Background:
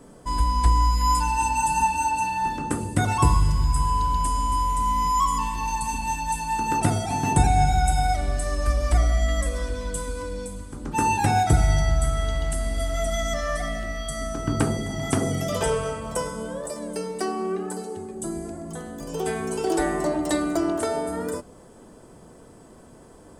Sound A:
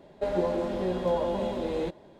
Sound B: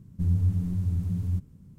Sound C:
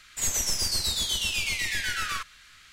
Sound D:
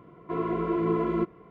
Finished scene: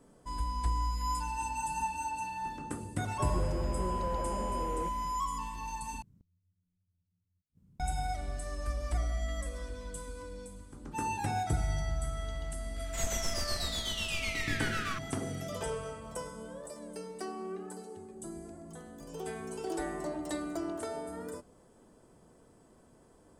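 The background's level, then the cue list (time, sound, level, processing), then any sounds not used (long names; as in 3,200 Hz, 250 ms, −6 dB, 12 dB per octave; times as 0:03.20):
background −12.5 dB
0:02.98: mix in A −7 dB + linear delta modulator 16 kbit/s, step −42.5 dBFS
0:06.02: overwrite with B −13 dB + gate with flip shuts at −34 dBFS, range −40 dB
0:12.76: mix in C −2.5 dB + high-shelf EQ 3,100 Hz −10 dB
not used: D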